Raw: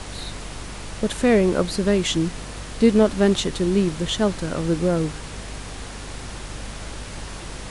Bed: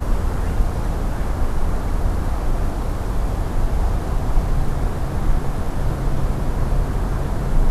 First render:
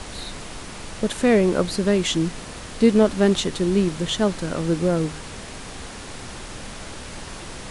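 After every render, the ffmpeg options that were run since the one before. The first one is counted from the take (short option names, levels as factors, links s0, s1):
-af "bandreject=f=50:t=h:w=4,bandreject=f=100:t=h:w=4,bandreject=f=150:t=h:w=4"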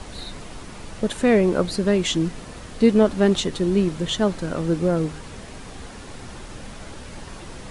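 -af "afftdn=nr=6:nf=-37"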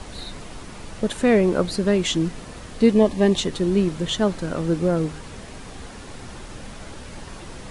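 -filter_complex "[0:a]asettb=1/sr,asplit=3[s0][s1][s2];[s0]atrim=end=2.934[s3];[s1]atrim=start=2.93:end=3.38,asetpts=PTS-STARTPTS,afade=t=in:d=0.004:c=qsin,afade=t=out:st=0.446:d=0.004:c=qsin,asuperstop=centerf=1400:order=8:qfactor=3.6[s4];[s2]atrim=start=3.376[s5];[s3][s4]acrossfade=d=0.004:c1=hsin:c2=qsin[s6];[s6][s5]acrossfade=d=0.004:c1=qsin:c2=hsin"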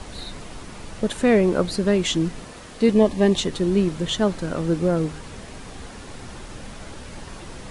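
-filter_complex "[0:a]asettb=1/sr,asplit=3[s0][s1][s2];[s0]atrim=end=2.474[s3];[s1]atrim=start=2.47:end=2.89,asetpts=PTS-STARTPTS,afade=t=in:d=0.004:c=qsin,afade=t=out:st=0.416:d=0.004:c=qsin,lowshelf=f=150:g=-9.5[s4];[s2]atrim=start=2.886[s5];[s3][s4]acrossfade=d=0.004:c1=hsin:c2=qsin[s6];[s6][s5]acrossfade=d=0.004:c1=qsin:c2=hsin"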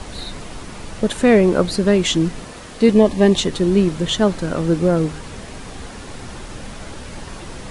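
-af "volume=1.68,alimiter=limit=0.891:level=0:latency=1"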